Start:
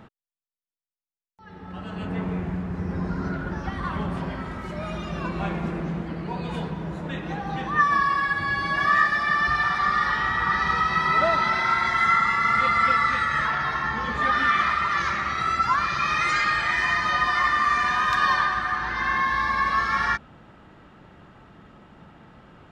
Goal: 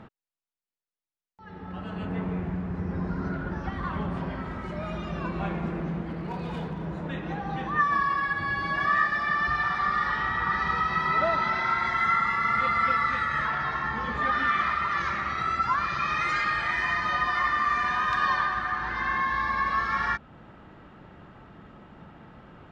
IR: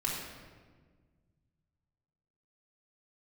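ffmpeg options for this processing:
-filter_complex "[0:a]aemphasis=mode=reproduction:type=50kf,asplit=2[link_01][link_02];[link_02]acompressor=threshold=-36dB:ratio=6,volume=-2.5dB[link_03];[link_01][link_03]amix=inputs=2:normalize=0,asettb=1/sr,asplit=3[link_04][link_05][link_06];[link_04]atrim=end=6.054[link_07];[link_05]atrim=start=6.05:end=6.87,asetpts=PTS-STARTPTS,afade=type=in:duration=0.004:curve=qsin,afade=type=out:start_time=0.816:duration=0.004:curve=qsin,volume=24.5dB,asoftclip=hard,volume=-24.5dB[link_08];[link_06]atrim=start=6.866[link_09];[link_07][link_08]acrossfade=duration=0.004:curve1=hsin:curve2=qsin[link_10];[link_10][link_09]acrossfade=duration=0.004:curve1=qsin:curve2=hsin,volume=-4dB"

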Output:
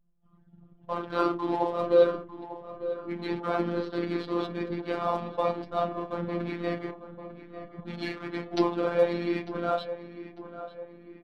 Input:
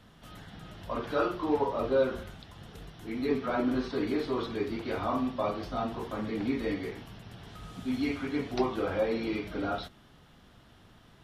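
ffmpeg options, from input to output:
ffmpeg -i in.wav -filter_complex "[0:a]anlmdn=1,lowshelf=frequency=160:gain=-8.5,aecho=1:1:5.6:0.44,asplit=2[link_01][link_02];[link_02]aeval=exprs='sgn(val(0))*max(abs(val(0))-0.00473,0)':channel_layout=same,volume=-11dB[link_03];[link_01][link_03]amix=inputs=2:normalize=0,asplit=2[link_04][link_05];[link_05]asetrate=35002,aresample=44100,atempo=1.25992,volume=-7dB[link_06];[link_04][link_06]amix=inputs=2:normalize=0,afftfilt=real='hypot(re,im)*cos(PI*b)':imag='0':win_size=1024:overlap=0.75,asplit=2[link_07][link_08];[link_08]adelay=898,lowpass=frequency=2300:poles=1,volume=-12.5dB,asplit=2[link_09][link_10];[link_10]adelay=898,lowpass=frequency=2300:poles=1,volume=0.51,asplit=2[link_11][link_12];[link_12]adelay=898,lowpass=frequency=2300:poles=1,volume=0.51,asplit=2[link_13][link_14];[link_14]adelay=898,lowpass=frequency=2300:poles=1,volume=0.51,asplit=2[link_15][link_16];[link_16]adelay=898,lowpass=frequency=2300:poles=1,volume=0.51[link_17];[link_09][link_11][link_13][link_15][link_17]amix=inputs=5:normalize=0[link_18];[link_07][link_18]amix=inputs=2:normalize=0,volume=3.5dB" out.wav

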